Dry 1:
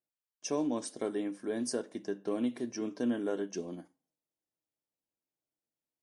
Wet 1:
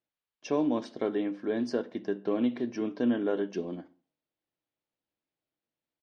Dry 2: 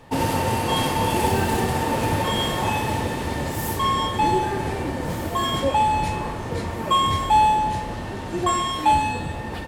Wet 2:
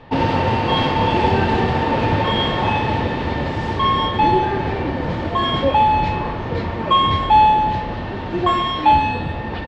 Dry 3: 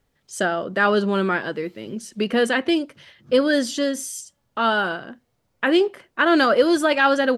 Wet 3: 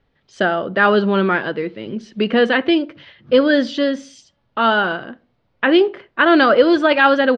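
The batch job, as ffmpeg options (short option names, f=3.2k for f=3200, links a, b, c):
-filter_complex "[0:a]lowpass=f=4.1k:w=0.5412,lowpass=f=4.1k:w=1.3066,asplit=2[a][b];[b]adelay=66,lowpass=f=1.1k:p=1,volume=-20dB,asplit=2[c][d];[d]adelay=66,lowpass=f=1.1k:p=1,volume=0.46,asplit=2[e][f];[f]adelay=66,lowpass=f=1.1k:p=1,volume=0.46[g];[a][c][e][g]amix=inputs=4:normalize=0,volume=4.5dB"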